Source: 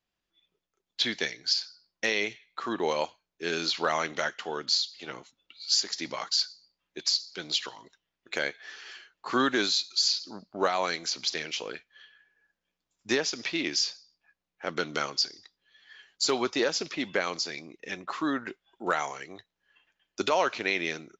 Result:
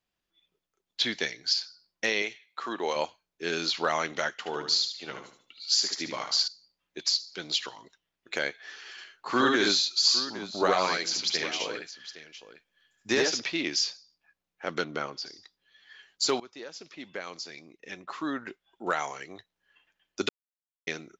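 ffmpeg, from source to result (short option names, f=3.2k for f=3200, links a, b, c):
-filter_complex "[0:a]asettb=1/sr,asplit=3[a][b][c];[a]atrim=end=2.224[d];[b]atrim=start=2.22:end=2.96,asetpts=PTS-STARTPTS,afade=t=in:d=0.004:c=qsin,afade=t=out:st=0.736:d=0.004:c=qsin,highpass=f=400:p=1[e];[c]atrim=start=2.956[f];[d][e]acrossfade=d=0.004:c1=hsin:c2=qsin[g];[g][f]acrossfade=d=0.004:c1=qsin:c2=hsin,asettb=1/sr,asplit=3[h][i][j];[h]atrim=end=4.364[k];[i]atrim=start=4.36:end=6.48,asetpts=PTS-STARTPTS,afade=t=in:d=0.004:c=qsin,afade=t=out:st=2.116:d=0.004:c=qsin,aecho=1:1:74|148|222|296:0.447|0.152|0.0516|0.0176,atrim=end_sample=93492[l];[j]atrim=start=6.476[m];[k][l]acrossfade=d=0.004:c1=hsin:c2=qsin[n];[n][m]acrossfade=d=0.004:c1=qsin:c2=hsin,asettb=1/sr,asplit=3[o][p][q];[o]atrim=end=8.914[r];[p]atrim=start=8.91:end=13.4,asetpts=PTS-STARTPTS,afade=t=in:d=0.004:c=qsin,afade=t=out:st=4.486:d=0.004:c=qsin,aecho=1:1:65|75|811:0.631|0.631|0.2,atrim=end_sample=198009[s];[q]atrim=start=13.396[t];[r][s]acrossfade=d=0.004:c1=hsin:c2=qsin[u];[u][t]acrossfade=d=0.004:c1=qsin:c2=hsin,asplit=3[v][w][x];[v]afade=t=out:st=14.83:d=0.02[y];[w]lowpass=f=1.4k:p=1,afade=t=in:st=14.83:d=0.02,afade=t=out:st=15.25:d=0.02[z];[x]afade=t=in:st=15.25:d=0.02[aa];[y][z][aa]amix=inputs=3:normalize=0,asplit=4[ab][ac][ad][ae];[ab]atrim=end=16.4,asetpts=PTS-STARTPTS,afade=t=out:st=16.396:d=0.004:c=hsin:silence=0.0891251[af];[ac]atrim=start=16.4:end=20.29,asetpts=PTS-STARTPTS,afade=t=in:d=2.9:silence=0.0891251,afade=t=out:st=3.886:d=0.004:c=hsin[ag];[ad]atrim=start=20.29:end=20.87,asetpts=PTS-STARTPTS,volume=0[ah];[ae]atrim=start=20.87,asetpts=PTS-STARTPTS,afade=t=in:d=0.004:c=hsin[ai];[af][ag][ah][ai]concat=n=4:v=0:a=1"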